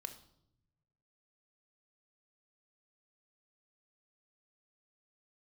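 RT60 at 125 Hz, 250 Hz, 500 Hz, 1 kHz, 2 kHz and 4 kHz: 1.7, 1.2, 0.85, 0.65, 0.50, 0.60 seconds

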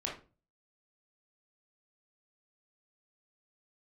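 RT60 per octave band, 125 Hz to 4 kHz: 0.55, 0.45, 0.40, 0.30, 0.25, 0.25 seconds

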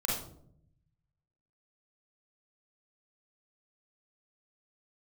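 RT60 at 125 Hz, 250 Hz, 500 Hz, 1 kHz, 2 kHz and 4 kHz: 1.6, 1.1, 0.80, 0.55, 0.40, 0.35 seconds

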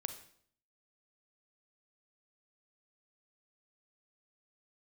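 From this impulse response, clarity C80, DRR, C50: 13.5 dB, 8.5 dB, 10.0 dB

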